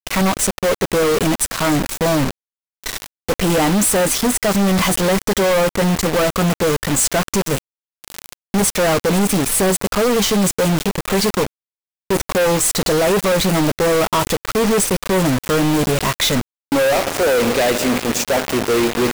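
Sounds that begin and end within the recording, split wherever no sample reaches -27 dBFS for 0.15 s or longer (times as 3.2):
2.84–3.06
3.29–7.58
8.04–8.33
8.54–11.47
12.1–16.41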